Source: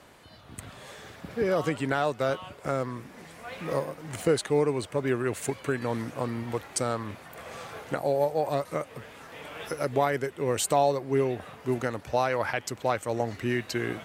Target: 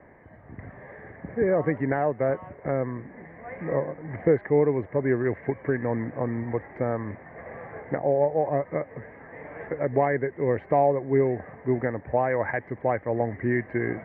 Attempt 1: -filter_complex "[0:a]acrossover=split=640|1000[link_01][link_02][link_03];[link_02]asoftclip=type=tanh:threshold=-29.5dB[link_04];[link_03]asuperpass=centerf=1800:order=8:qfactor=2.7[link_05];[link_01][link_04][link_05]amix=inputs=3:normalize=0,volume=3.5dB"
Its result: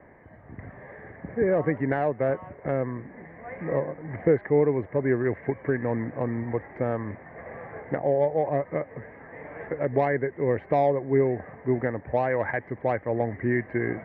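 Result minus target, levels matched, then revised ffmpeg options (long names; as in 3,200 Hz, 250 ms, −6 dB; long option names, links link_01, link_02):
soft clipping: distortion +13 dB
-filter_complex "[0:a]acrossover=split=640|1000[link_01][link_02][link_03];[link_02]asoftclip=type=tanh:threshold=-20dB[link_04];[link_03]asuperpass=centerf=1800:order=8:qfactor=2.7[link_05];[link_01][link_04][link_05]amix=inputs=3:normalize=0,volume=3.5dB"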